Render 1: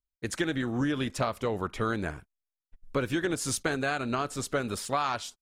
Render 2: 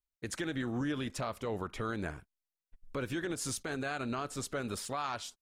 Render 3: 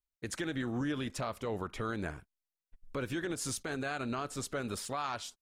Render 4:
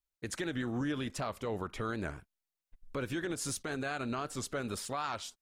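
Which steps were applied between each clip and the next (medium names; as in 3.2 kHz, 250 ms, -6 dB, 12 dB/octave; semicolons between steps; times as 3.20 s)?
peak limiter -22 dBFS, peak gain reduction 8.5 dB; trim -4 dB
no audible change
warped record 78 rpm, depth 100 cents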